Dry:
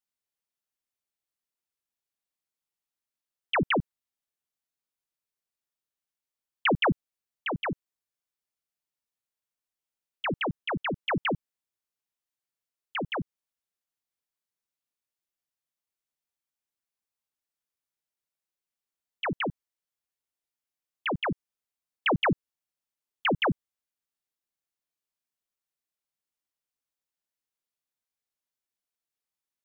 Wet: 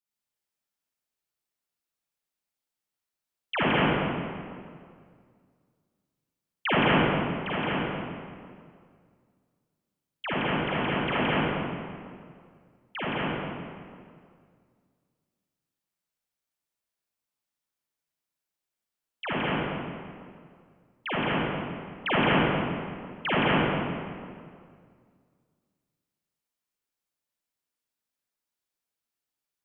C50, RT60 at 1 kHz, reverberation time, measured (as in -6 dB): -6.0 dB, 2.0 s, 2.1 s